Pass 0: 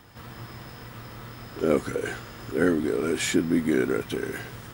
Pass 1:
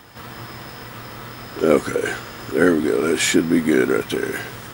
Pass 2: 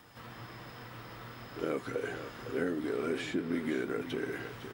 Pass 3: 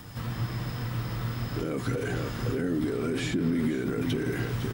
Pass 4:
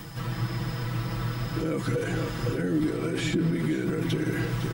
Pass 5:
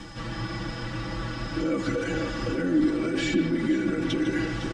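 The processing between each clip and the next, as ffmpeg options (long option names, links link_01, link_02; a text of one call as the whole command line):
ffmpeg -i in.wav -af "lowshelf=frequency=190:gain=-8,volume=8.5dB" out.wav
ffmpeg -i in.wav -filter_complex "[0:a]acrossover=split=840|4800[link_01][link_02][link_03];[link_01]acompressor=threshold=-19dB:ratio=4[link_04];[link_02]acompressor=threshold=-29dB:ratio=4[link_05];[link_03]acompressor=threshold=-52dB:ratio=4[link_06];[link_04][link_05][link_06]amix=inputs=3:normalize=0,flanger=delay=6.1:depth=2.1:regen=-55:speed=1.8:shape=triangular,asplit=2[link_07][link_08];[link_08]aecho=0:1:507:0.282[link_09];[link_07][link_09]amix=inputs=2:normalize=0,volume=-7.5dB" out.wav
ffmpeg -i in.wav -af "alimiter=level_in=8dB:limit=-24dB:level=0:latency=1:release=31,volume=-8dB,bass=frequency=250:gain=14,treble=frequency=4000:gain=6,volume=6.5dB" out.wav
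ffmpeg -i in.wav -af "aecho=1:1:6.1:0.83,areverse,acompressor=mode=upward:threshold=-31dB:ratio=2.5,areverse" out.wav
ffmpeg -i in.wav -filter_complex "[0:a]lowpass=frequency=7500:width=0.5412,lowpass=frequency=7500:width=1.3066,aecho=1:1:3.5:0.68,asplit=2[link_01][link_02];[link_02]adelay=150,highpass=300,lowpass=3400,asoftclip=type=hard:threshold=-21dB,volume=-8dB[link_03];[link_01][link_03]amix=inputs=2:normalize=0" out.wav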